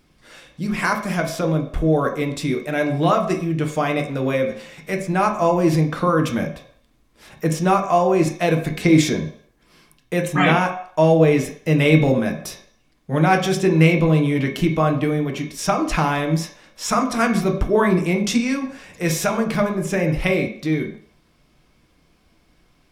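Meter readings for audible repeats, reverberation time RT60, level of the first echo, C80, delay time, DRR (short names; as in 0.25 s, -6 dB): none, 0.60 s, none, 11.5 dB, none, 1.5 dB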